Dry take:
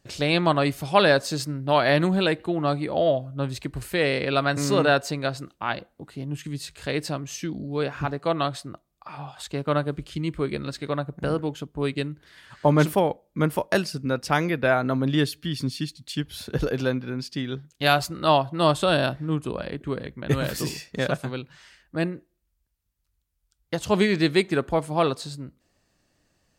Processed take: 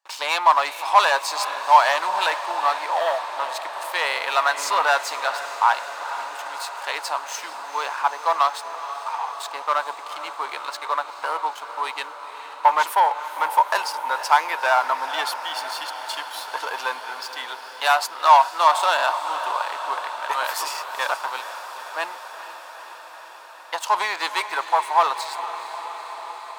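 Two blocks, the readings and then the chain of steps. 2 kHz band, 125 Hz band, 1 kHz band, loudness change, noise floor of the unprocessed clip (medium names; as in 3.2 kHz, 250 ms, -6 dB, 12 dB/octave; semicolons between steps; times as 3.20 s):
+4.0 dB, under -40 dB, +10.0 dB, +2.5 dB, -74 dBFS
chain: waveshaping leveller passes 3; ladder high-pass 870 Hz, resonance 75%; on a send: echo that smears into a reverb 457 ms, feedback 76%, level -12 dB; on the sum: trim +4.5 dB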